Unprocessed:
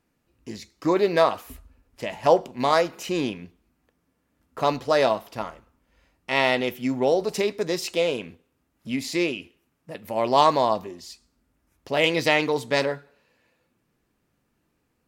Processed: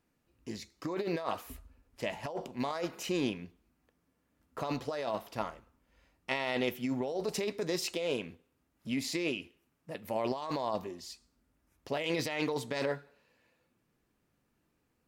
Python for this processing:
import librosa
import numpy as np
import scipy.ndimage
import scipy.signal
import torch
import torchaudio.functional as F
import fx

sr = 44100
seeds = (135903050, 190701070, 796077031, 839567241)

y = fx.over_compress(x, sr, threshold_db=-25.0, ratio=-1.0)
y = y * librosa.db_to_amplitude(-8.0)